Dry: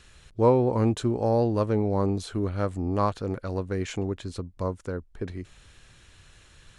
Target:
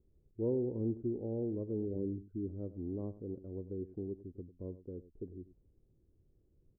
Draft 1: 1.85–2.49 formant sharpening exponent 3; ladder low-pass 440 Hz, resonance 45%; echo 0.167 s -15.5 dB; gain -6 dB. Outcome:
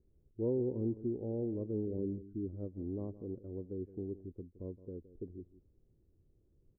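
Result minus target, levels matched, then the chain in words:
echo 69 ms late
1.85–2.49 formant sharpening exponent 3; ladder low-pass 440 Hz, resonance 45%; echo 98 ms -15.5 dB; gain -6 dB

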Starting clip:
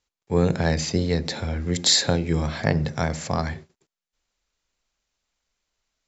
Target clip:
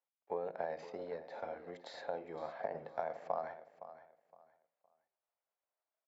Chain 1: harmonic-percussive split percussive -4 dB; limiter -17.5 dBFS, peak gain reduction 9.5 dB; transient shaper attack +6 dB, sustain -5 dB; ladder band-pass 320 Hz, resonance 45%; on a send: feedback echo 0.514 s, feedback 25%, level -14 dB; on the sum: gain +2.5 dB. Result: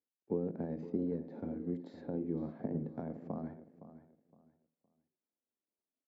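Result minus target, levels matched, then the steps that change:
1000 Hz band -14.5 dB
change: ladder band-pass 770 Hz, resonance 45%

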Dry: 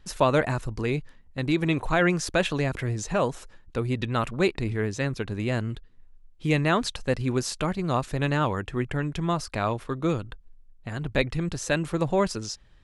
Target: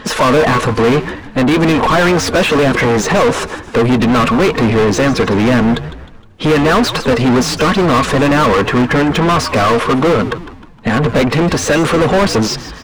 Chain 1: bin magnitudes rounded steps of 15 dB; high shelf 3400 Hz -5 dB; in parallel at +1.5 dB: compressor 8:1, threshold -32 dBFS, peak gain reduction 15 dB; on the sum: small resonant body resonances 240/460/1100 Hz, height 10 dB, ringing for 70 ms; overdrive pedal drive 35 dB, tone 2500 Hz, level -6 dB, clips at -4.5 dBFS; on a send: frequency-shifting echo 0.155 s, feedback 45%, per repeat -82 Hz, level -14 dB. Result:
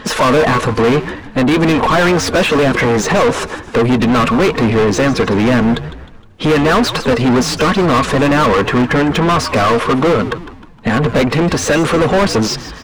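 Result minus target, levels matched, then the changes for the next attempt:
compressor: peak gain reduction +9 dB
change: compressor 8:1, threshold -22 dBFS, peak gain reduction 6.5 dB

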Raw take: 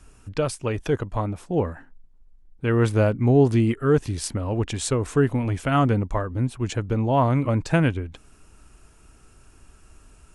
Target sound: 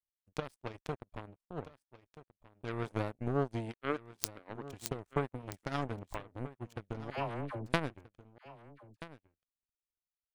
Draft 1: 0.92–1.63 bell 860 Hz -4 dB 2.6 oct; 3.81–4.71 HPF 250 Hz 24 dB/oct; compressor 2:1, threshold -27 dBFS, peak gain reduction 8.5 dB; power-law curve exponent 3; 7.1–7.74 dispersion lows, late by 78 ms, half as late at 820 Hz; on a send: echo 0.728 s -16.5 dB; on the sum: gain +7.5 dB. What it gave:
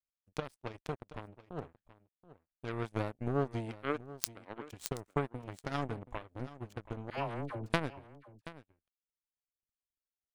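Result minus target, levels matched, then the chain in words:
echo 0.552 s early
0.92–1.63 bell 860 Hz -4 dB 2.6 oct; 3.81–4.71 HPF 250 Hz 24 dB/oct; compressor 2:1, threshold -27 dBFS, peak gain reduction 8.5 dB; power-law curve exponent 3; 7.1–7.74 dispersion lows, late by 78 ms, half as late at 820 Hz; on a send: echo 1.28 s -16.5 dB; on the sum: gain +7.5 dB

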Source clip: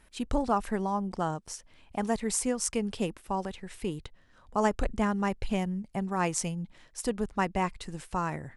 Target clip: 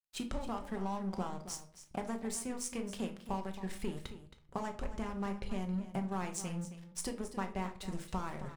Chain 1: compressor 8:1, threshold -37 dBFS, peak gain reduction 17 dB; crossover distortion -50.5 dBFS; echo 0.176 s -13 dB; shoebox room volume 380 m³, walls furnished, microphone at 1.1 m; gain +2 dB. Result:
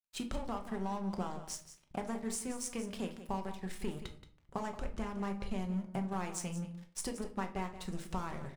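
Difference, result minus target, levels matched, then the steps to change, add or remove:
echo 94 ms early
change: echo 0.27 s -13 dB

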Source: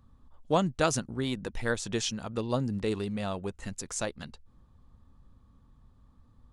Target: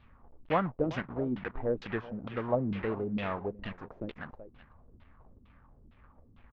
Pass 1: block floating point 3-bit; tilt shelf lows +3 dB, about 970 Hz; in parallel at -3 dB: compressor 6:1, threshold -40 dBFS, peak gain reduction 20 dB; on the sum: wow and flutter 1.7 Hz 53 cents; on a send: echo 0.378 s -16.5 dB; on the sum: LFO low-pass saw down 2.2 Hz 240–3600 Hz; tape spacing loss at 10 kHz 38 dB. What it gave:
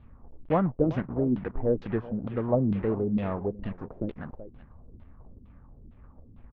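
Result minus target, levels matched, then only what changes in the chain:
1000 Hz band -5.0 dB
change: tilt shelf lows -5.5 dB, about 970 Hz

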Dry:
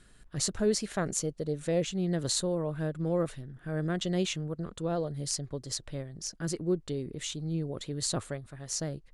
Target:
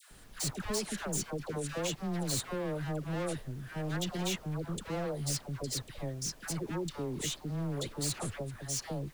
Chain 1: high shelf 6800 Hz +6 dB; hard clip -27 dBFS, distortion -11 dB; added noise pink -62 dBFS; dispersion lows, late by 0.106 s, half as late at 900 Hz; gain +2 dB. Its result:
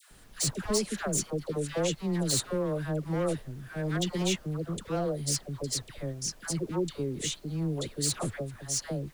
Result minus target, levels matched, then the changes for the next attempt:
hard clip: distortion -6 dB
change: hard clip -35 dBFS, distortion -5 dB

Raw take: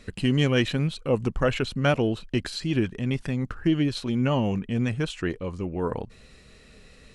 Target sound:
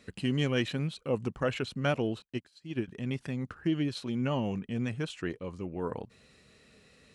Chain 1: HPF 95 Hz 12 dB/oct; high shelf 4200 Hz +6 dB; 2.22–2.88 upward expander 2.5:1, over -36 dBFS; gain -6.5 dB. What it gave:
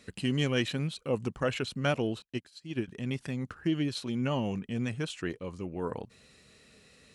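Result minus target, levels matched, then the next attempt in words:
8000 Hz band +4.5 dB
HPF 95 Hz 12 dB/oct; 2.22–2.88 upward expander 2.5:1, over -36 dBFS; gain -6.5 dB

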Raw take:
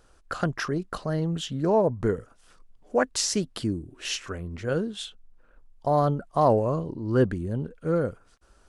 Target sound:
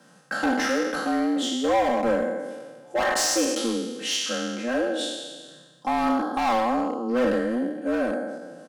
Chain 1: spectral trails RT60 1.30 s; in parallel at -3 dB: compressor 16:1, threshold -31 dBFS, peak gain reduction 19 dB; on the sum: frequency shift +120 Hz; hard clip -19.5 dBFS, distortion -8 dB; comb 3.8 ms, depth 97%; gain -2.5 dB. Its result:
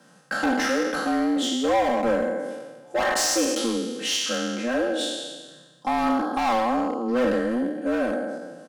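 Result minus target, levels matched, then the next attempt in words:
compressor: peak gain reduction -10.5 dB
spectral trails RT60 1.30 s; in parallel at -3 dB: compressor 16:1, threshold -42 dBFS, peak gain reduction 29.5 dB; on the sum: frequency shift +120 Hz; hard clip -19.5 dBFS, distortion -9 dB; comb 3.8 ms, depth 97%; gain -2.5 dB

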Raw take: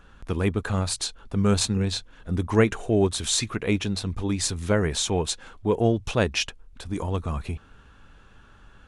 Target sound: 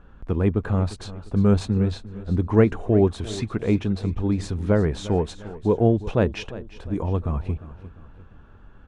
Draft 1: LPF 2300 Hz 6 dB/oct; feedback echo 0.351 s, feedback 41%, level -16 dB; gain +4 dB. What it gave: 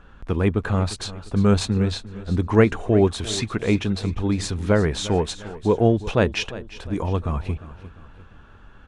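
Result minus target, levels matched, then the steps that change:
2000 Hz band +6.0 dB
change: LPF 690 Hz 6 dB/oct

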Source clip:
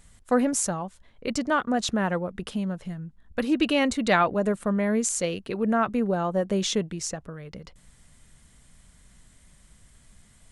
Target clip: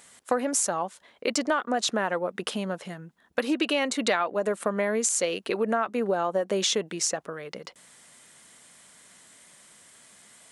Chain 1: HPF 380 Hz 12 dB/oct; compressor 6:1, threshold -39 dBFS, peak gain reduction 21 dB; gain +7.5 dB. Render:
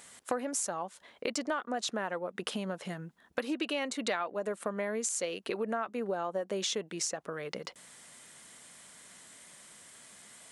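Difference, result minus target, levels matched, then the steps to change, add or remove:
compressor: peak gain reduction +8 dB
change: compressor 6:1, threshold -29.5 dBFS, peak gain reduction 13 dB

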